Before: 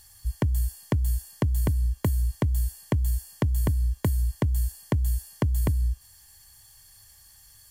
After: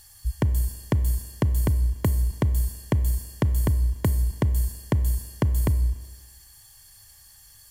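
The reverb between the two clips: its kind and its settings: Schroeder reverb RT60 1.3 s, combs from 28 ms, DRR 14.5 dB; trim +2 dB

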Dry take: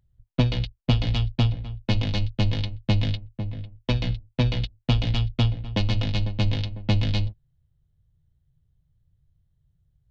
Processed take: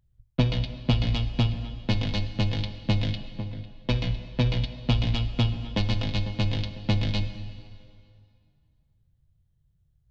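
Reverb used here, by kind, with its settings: plate-style reverb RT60 2.4 s, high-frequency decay 0.85×, DRR 9.5 dB; trim -1.5 dB

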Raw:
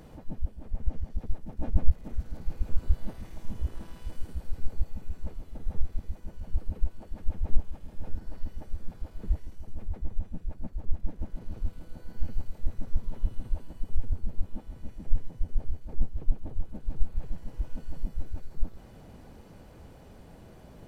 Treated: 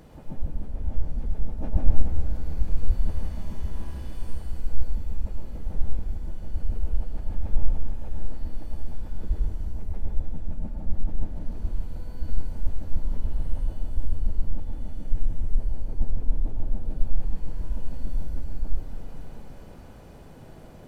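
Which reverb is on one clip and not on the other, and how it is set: plate-style reverb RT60 2.3 s, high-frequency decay 0.8×, pre-delay 85 ms, DRR -1.5 dB

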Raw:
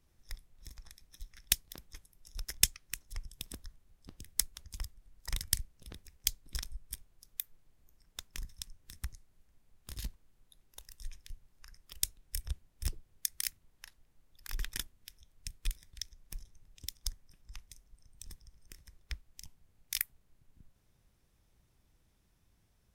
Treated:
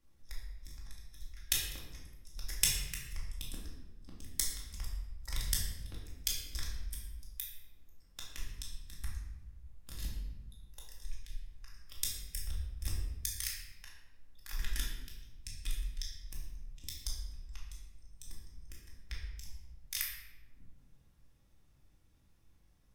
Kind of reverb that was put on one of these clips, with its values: simulated room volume 510 m³, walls mixed, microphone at 2.3 m; trim -5.5 dB

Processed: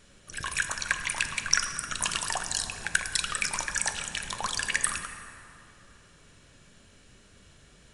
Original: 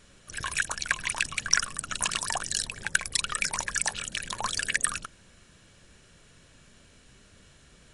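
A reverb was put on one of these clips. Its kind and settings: plate-style reverb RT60 2.9 s, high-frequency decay 0.5×, DRR 6.5 dB; trim -1 dB

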